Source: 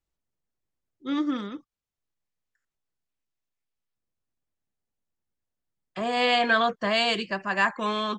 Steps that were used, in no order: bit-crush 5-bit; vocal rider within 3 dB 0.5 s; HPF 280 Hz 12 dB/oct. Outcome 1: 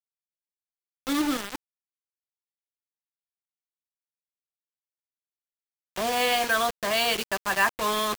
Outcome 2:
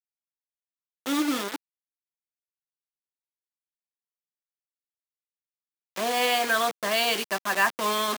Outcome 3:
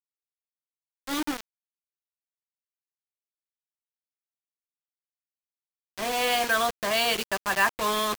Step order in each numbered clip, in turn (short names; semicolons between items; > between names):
vocal rider > HPF > bit-crush; vocal rider > bit-crush > HPF; HPF > vocal rider > bit-crush